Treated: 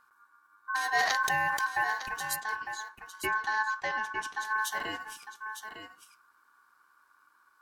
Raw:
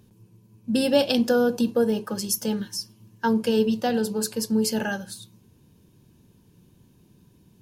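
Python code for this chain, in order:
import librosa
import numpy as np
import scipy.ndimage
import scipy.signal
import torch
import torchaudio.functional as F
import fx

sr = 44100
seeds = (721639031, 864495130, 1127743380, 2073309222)

y = fx.lowpass(x, sr, hz=4900.0, slope=12, at=(2.36, 4.45))
y = y * np.sin(2.0 * np.pi * 1300.0 * np.arange(len(y)) / sr)
y = y + 10.0 ** (-9.0 / 20.0) * np.pad(y, (int(905 * sr / 1000.0), 0))[:len(y)]
y = fx.sustainer(y, sr, db_per_s=22.0, at=(0.92, 1.62))
y = F.gain(torch.from_numpy(y), -6.0).numpy()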